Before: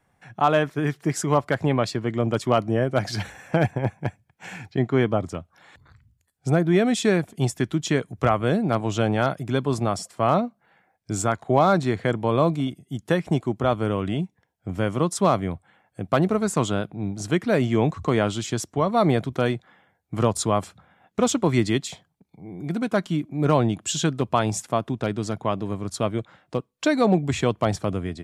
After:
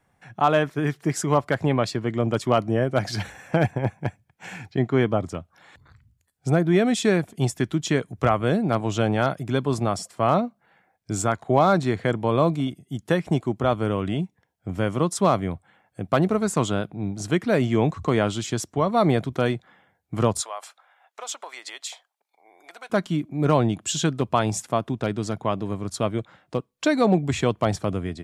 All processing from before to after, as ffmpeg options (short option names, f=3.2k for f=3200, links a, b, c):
-filter_complex "[0:a]asettb=1/sr,asplit=3[a][b][c];[a]atrim=end=20.414[d];[b]atrim=start=20.41:end=22.9,asetpts=PTS-STARTPTS,afade=t=in:d=0.004:c=qsin,afade=t=out:st=2.486:d=0.004:c=qsin,acompressor=threshold=-25dB:ratio=4:attack=3.2:release=140:knee=1:detection=peak,highpass=f=650:w=0.5412,highpass=f=650:w=1.3066[e];[c]atrim=start=22.896[f];[d][e]acrossfade=d=0.004:c1=hsin:c2=qsin[g];[g][f]acrossfade=d=0.004:c1=qsin:c2=hsin"